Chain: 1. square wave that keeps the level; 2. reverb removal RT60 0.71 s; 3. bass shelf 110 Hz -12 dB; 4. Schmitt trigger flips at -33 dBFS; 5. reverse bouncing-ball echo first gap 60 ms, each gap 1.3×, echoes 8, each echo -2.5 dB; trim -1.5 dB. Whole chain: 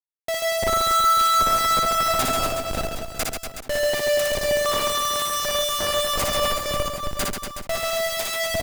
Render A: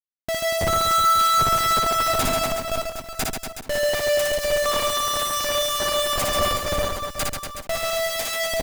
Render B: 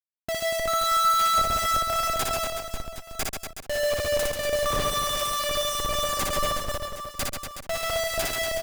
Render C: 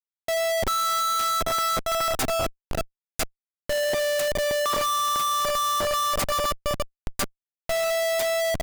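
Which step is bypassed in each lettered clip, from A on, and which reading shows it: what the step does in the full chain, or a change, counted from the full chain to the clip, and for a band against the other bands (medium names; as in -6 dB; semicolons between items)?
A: 3, 125 Hz band +1.5 dB; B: 1, distortion -6 dB; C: 5, crest factor change -4.5 dB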